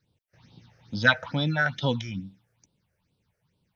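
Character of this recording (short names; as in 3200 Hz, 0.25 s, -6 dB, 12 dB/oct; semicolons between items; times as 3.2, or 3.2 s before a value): phasing stages 6, 2.3 Hz, lowest notch 240–1900 Hz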